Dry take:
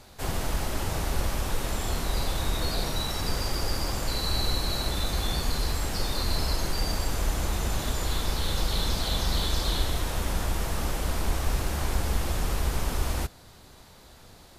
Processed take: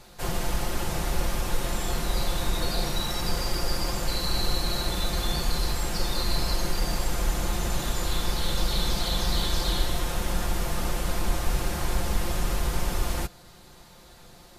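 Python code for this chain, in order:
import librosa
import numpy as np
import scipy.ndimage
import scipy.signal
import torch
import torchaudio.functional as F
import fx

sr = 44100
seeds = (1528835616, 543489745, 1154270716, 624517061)

y = x + 0.52 * np.pad(x, (int(5.7 * sr / 1000.0), 0))[:len(x)]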